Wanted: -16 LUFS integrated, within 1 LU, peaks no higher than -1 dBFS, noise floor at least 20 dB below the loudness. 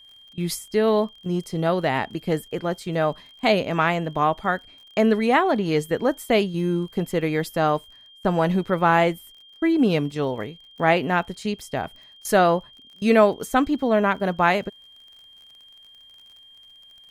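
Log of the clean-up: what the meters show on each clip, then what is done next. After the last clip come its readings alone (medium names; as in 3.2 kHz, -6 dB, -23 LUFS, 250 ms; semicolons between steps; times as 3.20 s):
tick rate 40 per s; steady tone 3.2 kHz; tone level -47 dBFS; loudness -22.5 LUFS; peak level -4.0 dBFS; loudness target -16.0 LUFS
-> de-click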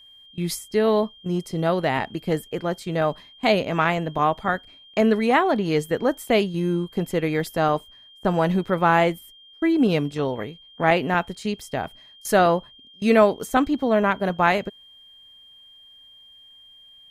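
tick rate 0 per s; steady tone 3.2 kHz; tone level -47 dBFS
-> band-stop 3.2 kHz, Q 30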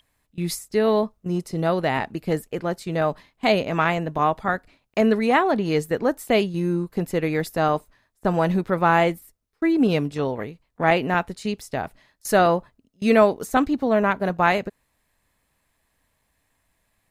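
steady tone not found; loudness -22.5 LUFS; peak level -4.0 dBFS; loudness target -16.0 LUFS
-> trim +6.5 dB; peak limiter -1 dBFS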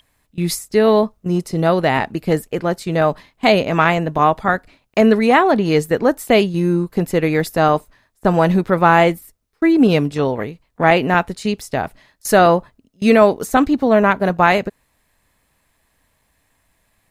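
loudness -16.5 LUFS; peak level -1.0 dBFS; noise floor -65 dBFS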